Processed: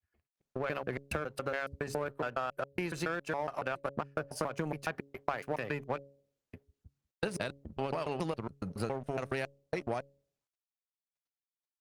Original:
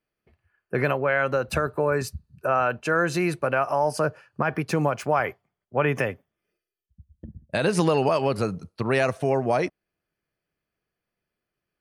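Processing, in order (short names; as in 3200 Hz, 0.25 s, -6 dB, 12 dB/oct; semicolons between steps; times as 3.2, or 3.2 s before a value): slices in reverse order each 0.139 s, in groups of 4; compressor 4:1, threshold -30 dBFS, peak gain reduction 11.5 dB; power-law curve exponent 1.4; de-hum 139.4 Hz, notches 4; gain +1.5 dB; Opus 48 kbps 48000 Hz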